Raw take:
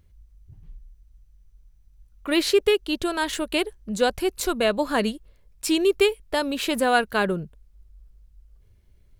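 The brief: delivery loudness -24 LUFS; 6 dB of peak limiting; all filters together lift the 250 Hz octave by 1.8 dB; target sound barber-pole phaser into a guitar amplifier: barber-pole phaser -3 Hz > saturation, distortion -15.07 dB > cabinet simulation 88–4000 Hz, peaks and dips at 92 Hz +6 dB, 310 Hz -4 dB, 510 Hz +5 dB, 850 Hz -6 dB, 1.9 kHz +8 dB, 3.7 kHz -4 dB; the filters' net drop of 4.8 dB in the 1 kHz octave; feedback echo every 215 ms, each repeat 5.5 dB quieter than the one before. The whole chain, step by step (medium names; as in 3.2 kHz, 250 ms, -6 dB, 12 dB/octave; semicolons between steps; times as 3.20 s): peaking EQ 250 Hz +5.5 dB; peaking EQ 1 kHz -5 dB; peak limiter -13 dBFS; feedback delay 215 ms, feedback 53%, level -5.5 dB; barber-pole phaser -3 Hz; saturation -19.5 dBFS; cabinet simulation 88–4000 Hz, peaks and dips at 92 Hz +6 dB, 310 Hz -4 dB, 510 Hz +5 dB, 850 Hz -6 dB, 1.9 kHz +8 dB, 3.7 kHz -4 dB; trim +5 dB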